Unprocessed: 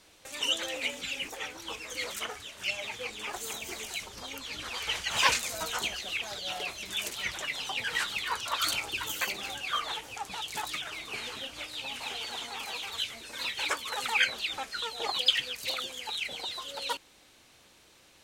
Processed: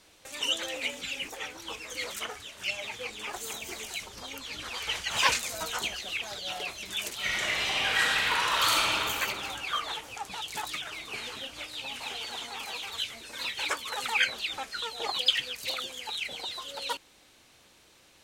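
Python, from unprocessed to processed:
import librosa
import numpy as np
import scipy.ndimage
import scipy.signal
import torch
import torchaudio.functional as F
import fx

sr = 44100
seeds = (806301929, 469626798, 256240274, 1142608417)

y = fx.reverb_throw(x, sr, start_s=7.17, length_s=1.76, rt60_s=2.8, drr_db=-6.0)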